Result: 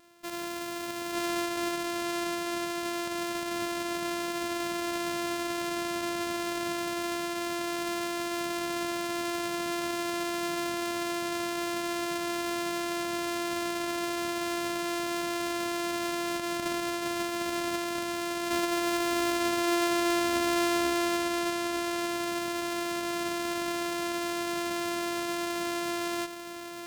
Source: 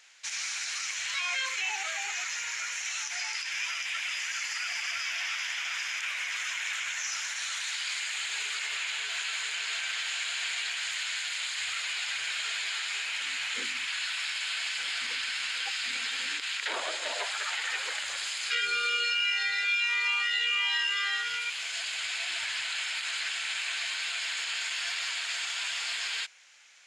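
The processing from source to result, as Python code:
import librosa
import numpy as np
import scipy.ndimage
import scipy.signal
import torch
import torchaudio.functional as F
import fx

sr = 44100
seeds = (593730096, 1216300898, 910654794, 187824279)

y = np.r_[np.sort(x[:len(x) // 128 * 128].reshape(-1, 128), axis=1).ravel(), x[len(x) // 128 * 128:]]
y = y + 10.0 ** (-7.0 / 20.0) * np.pad(y, (int(894 * sr / 1000.0), 0))[:len(y)]
y = F.gain(torch.from_numpy(y), -1.5).numpy()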